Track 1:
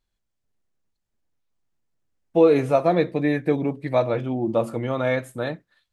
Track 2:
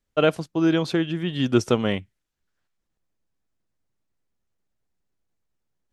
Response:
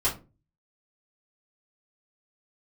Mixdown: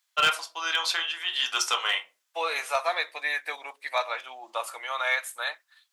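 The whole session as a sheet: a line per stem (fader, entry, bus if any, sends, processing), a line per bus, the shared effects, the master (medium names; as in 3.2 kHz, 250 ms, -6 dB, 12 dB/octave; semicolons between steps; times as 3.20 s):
+1.5 dB, 0.00 s, no send, none
-1.0 dB, 0.00 s, send -10.5 dB, none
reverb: on, RT60 0.30 s, pre-delay 3 ms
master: high-pass 900 Hz 24 dB/octave; treble shelf 2.4 kHz +8 dB; hard clipper -15 dBFS, distortion -20 dB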